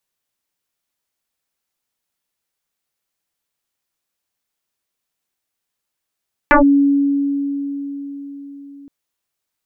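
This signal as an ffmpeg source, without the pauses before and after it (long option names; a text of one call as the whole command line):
ffmpeg -f lavfi -i "aevalsrc='0.501*pow(10,-3*t/4.67)*sin(2*PI*281*t+6.6*clip(1-t/0.12,0,1)*sin(2*PI*1.04*281*t))':duration=2.37:sample_rate=44100" out.wav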